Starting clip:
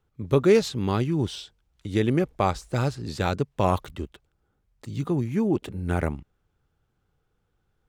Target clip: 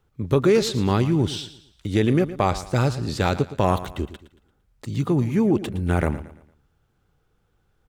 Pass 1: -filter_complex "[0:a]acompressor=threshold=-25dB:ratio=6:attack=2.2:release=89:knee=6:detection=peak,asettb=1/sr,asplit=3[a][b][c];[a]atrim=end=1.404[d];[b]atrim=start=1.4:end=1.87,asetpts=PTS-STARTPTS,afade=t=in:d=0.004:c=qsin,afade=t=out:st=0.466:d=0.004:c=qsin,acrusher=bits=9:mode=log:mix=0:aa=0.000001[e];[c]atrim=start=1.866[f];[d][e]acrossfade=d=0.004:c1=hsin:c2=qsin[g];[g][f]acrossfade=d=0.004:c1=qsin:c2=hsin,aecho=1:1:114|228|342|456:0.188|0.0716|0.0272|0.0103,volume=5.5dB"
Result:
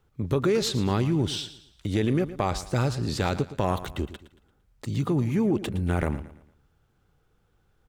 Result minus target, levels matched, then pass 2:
compressor: peak gain reduction +6 dB
-filter_complex "[0:a]acompressor=threshold=-17.5dB:ratio=6:attack=2.2:release=89:knee=6:detection=peak,asettb=1/sr,asplit=3[a][b][c];[a]atrim=end=1.404[d];[b]atrim=start=1.4:end=1.87,asetpts=PTS-STARTPTS,afade=t=in:d=0.004:c=qsin,afade=t=out:st=0.466:d=0.004:c=qsin,acrusher=bits=9:mode=log:mix=0:aa=0.000001[e];[c]atrim=start=1.866[f];[d][e]acrossfade=d=0.004:c1=hsin:c2=qsin[g];[g][f]acrossfade=d=0.004:c1=qsin:c2=hsin,aecho=1:1:114|228|342|456:0.188|0.0716|0.0272|0.0103,volume=5.5dB"

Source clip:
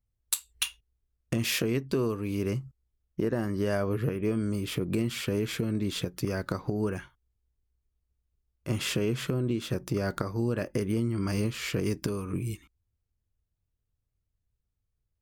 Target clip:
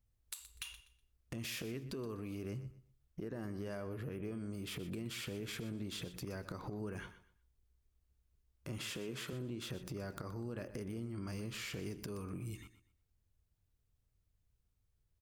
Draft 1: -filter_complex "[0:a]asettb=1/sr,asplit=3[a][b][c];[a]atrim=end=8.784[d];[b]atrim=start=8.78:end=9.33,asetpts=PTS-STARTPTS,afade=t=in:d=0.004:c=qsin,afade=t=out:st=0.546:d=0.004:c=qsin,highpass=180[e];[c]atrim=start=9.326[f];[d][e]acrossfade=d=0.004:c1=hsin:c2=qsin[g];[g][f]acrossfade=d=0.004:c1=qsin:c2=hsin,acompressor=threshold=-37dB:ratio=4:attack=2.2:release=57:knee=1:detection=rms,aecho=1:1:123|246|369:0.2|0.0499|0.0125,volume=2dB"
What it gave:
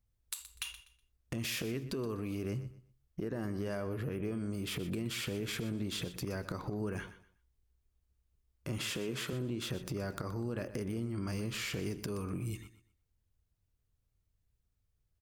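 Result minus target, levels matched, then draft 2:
compressor: peak gain reduction -5.5 dB
-filter_complex "[0:a]asettb=1/sr,asplit=3[a][b][c];[a]atrim=end=8.784[d];[b]atrim=start=8.78:end=9.33,asetpts=PTS-STARTPTS,afade=t=in:d=0.004:c=qsin,afade=t=out:st=0.546:d=0.004:c=qsin,highpass=180[e];[c]atrim=start=9.326[f];[d][e]acrossfade=d=0.004:c1=hsin:c2=qsin[g];[g][f]acrossfade=d=0.004:c1=qsin:c2=hsin,acompressor=threshold=-44.5dB:ratio=4:attack=2.2:release=57:knee=1:detection=rms,aecho=1:1:123|246|369:0.2|0.0499|0.0125,volume=2dB"

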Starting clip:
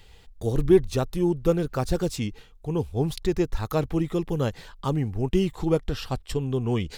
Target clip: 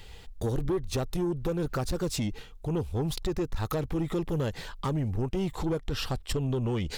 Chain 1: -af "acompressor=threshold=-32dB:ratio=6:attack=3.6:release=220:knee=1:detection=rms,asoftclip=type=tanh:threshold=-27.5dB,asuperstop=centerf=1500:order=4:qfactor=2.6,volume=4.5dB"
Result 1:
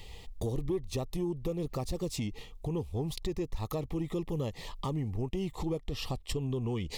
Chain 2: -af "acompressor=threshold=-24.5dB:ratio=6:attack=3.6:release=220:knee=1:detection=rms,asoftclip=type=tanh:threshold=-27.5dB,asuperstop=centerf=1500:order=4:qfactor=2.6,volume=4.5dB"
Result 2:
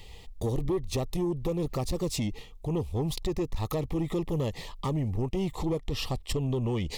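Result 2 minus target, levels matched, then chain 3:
2000 Hz band -3.0 dB
-af "acompressor=threshold=-24.5dB:ratio=6:attack=3.6:release=220:knee=1:detection=rms,asoftclip=type=tanh:threshold=-27.5dB,volume=4.5dB"

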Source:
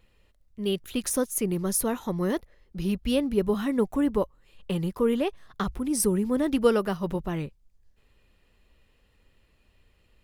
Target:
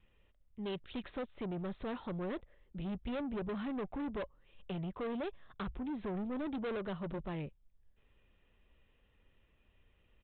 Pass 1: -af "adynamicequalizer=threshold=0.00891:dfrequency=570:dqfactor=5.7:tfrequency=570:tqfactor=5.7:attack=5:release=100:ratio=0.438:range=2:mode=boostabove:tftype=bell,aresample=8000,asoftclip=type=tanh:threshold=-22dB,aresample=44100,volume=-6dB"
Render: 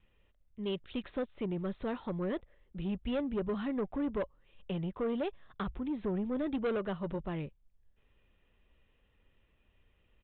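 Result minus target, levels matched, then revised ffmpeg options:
soft clip: distortion -5 dB
-af "adynamicequalizer=threshold=0.00891:dfrequency=570:dqfactor=5.7:tfrequency=570:tqfactor=5.7:attack=5:release=100:ratio=0.438:range=2:mode=boostabove:tftype=bell,aresample=8000,asoftclip=type=tanh:threshold=-29.5dB,aresample=44100,volume=-6dB"

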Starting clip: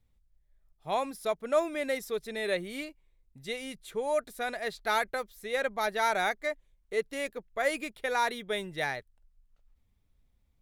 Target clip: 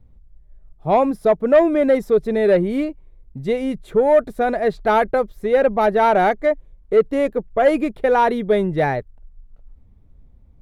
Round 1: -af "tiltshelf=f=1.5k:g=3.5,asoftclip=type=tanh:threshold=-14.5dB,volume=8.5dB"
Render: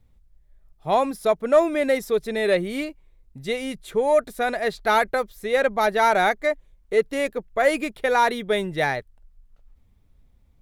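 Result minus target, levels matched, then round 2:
2000 Hz band +6.0 dB
-af "tiltshelf=f=1.5k:g=12.5,asoftclip=type=tanh:threshold=-14.5dB,volume=8.5dB"

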